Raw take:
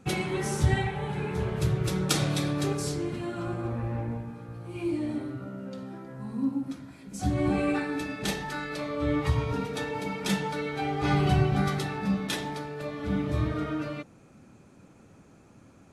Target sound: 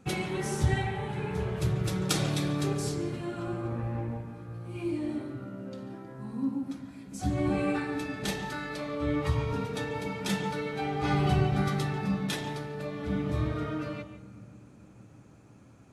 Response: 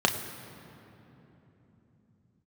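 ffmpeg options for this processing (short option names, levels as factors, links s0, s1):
-filter_complex "[0:a]asplit=2[s0][s1];[1:a]atrim=start_sample=2205,adelay=141[s2];[s1][s2]afir=irnorm=-1:irlink=0,volume=0.0596[s3];[s0][s3]amix=inputs=2:normalize=0,volume=0.75"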